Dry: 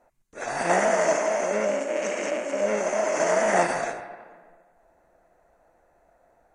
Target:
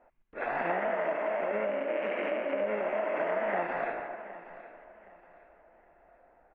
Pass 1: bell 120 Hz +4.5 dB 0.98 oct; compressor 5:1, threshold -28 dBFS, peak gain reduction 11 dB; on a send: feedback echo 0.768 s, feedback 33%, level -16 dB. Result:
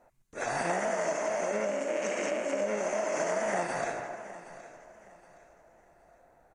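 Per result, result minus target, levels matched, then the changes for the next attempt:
4000 Hz band +6.0 dB; 125 Hz band +5.0 dB
add after compressor: steep low-pass 2900 Hz 36 dB/oct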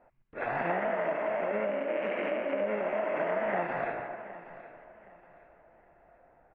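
125 Hz band +5.0 dB
change: bell 120 Hz -7.5 dB 0.98 oct

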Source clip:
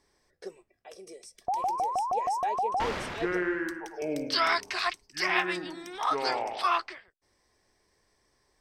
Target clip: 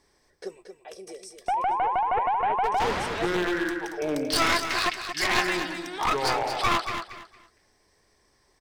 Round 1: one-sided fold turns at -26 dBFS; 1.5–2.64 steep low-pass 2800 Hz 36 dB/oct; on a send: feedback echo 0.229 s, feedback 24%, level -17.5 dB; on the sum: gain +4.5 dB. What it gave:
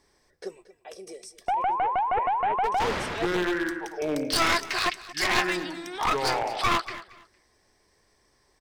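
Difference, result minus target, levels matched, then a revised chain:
echo-to-direct -9 dB
one-sided fold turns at -26 dBFS; 1.5–2.64 steep low-pass 2800 Hz 36 dB/oct; on a send: feedback echo 0.229 s, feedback 24%, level -8.5 dB; on the sum: gain +4.5 dB

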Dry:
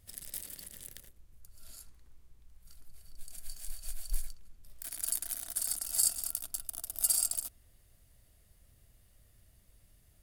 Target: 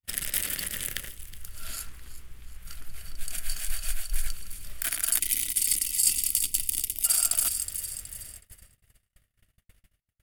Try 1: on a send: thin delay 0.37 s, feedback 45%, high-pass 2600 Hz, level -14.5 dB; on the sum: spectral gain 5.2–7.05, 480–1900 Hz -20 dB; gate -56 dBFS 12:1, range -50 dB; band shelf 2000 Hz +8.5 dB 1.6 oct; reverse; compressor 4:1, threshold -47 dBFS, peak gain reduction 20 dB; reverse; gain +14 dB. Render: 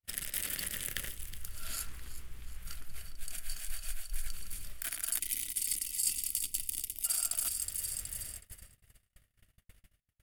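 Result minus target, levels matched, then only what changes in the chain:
compressor: peak gain reduction +8.5 dB
change: compressor 4:1, threshold -35.5 dBFS, peak gain reduction 11.5 dB

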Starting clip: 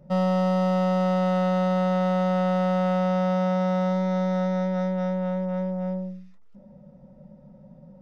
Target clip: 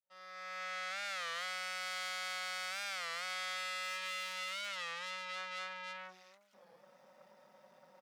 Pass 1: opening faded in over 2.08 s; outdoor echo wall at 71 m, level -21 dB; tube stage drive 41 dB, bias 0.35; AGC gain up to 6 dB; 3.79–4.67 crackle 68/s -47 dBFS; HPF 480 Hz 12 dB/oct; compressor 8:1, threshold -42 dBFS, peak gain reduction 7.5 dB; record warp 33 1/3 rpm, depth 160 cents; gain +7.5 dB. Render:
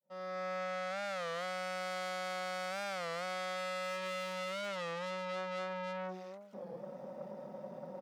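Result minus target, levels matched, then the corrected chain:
500 Hz band +13.5 dB
opening faded in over 2.08 s; outdoor echo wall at 71 m, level -21 dB; tube stage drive 41 dB, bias 0.35; AGC gain up to 6 dB; 3.79–4.67 crackle 68/s -47 dBFS; HPF 1700 Hz 12 dB/oct; compressor 8:1, threshold -42 dBFS, peak gain reduction 3 dB; record warp 33 1/3 rpm, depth 160 cents; gain +7.5 dB

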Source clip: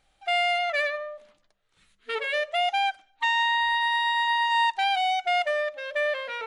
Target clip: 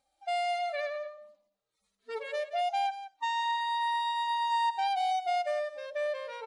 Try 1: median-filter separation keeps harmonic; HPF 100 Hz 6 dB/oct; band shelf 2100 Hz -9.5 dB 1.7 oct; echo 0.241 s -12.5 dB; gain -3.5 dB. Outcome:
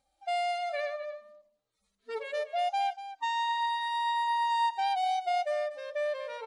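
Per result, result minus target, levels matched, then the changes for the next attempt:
echo 68 ms late; 125 Hz band +6.5 dB
change: echo 0.173 s -12.5 dB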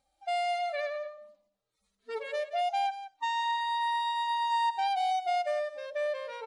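125 Hz band +6.5 dB
change: HPF 270 Hz 6 dB/oct

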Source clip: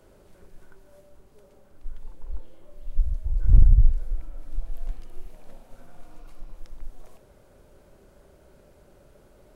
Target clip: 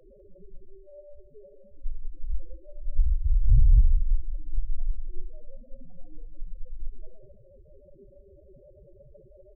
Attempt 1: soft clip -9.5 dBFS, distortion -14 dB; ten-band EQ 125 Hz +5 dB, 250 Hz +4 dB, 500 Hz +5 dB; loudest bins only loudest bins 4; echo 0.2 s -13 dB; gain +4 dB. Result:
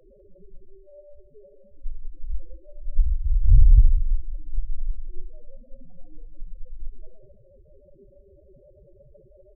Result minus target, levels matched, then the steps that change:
soft clip: distortion -7 dB
change: soft clip -16.5 dBFS, distortion -7 dB

